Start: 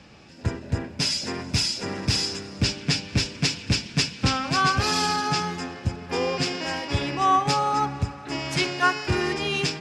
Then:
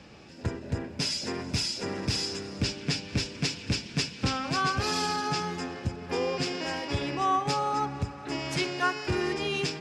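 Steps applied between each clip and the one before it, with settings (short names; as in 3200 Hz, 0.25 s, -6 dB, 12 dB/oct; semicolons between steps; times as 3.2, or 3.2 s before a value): bell 410 Hz +3.5 dB 1.1 oct; in parallel at +2.5 dB: compressor, threshold -30 dBFS, peak gain reduction 14 dB; on the sum: gain -9 dB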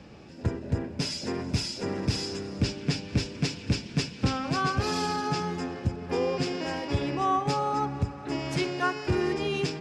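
tilt shelf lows +3.5 dB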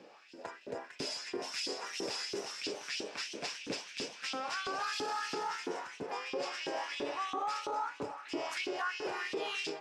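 echoes that change speed 0.478 s, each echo +1 st, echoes 3, each echo -6 dB; LFO high-pass saw up 3 Hz 310–3300 Hz; limiter -21.5 dBFS, peak gain reduction 11 dB; gain -6 dB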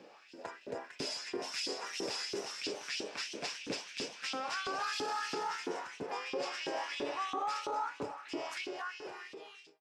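ending faded out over 1.78 s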